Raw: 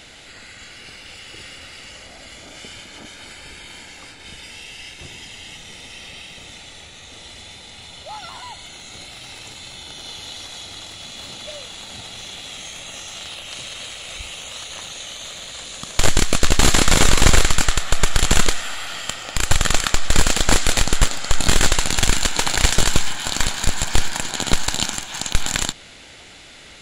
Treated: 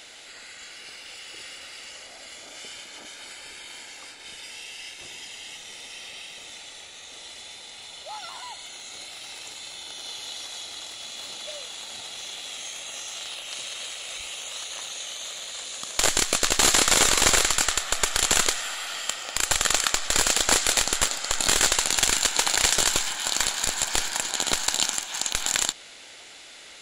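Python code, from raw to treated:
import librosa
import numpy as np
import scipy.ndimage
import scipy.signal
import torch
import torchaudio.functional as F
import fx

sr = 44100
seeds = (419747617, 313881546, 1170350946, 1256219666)

y = fx.bass_treble(x, sr, bass_db=-15, treble_db=4)
y = y * 10.0 ** (-3.5 / 20.0)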